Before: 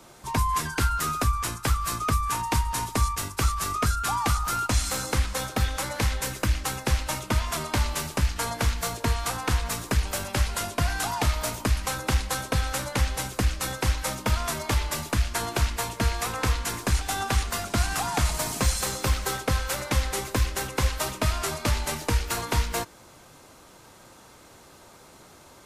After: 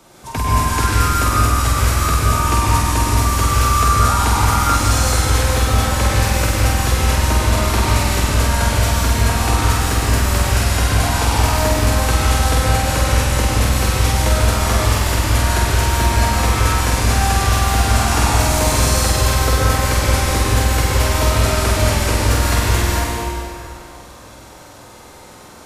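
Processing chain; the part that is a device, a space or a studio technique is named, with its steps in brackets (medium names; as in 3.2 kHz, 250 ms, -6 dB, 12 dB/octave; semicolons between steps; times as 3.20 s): tunnel (flutter echo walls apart 8.3 m, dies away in 0.8 s; reverberation RT60 2.8 s, pre-delay 105 ms, DRR -5.5 dB); trim +1.5 dB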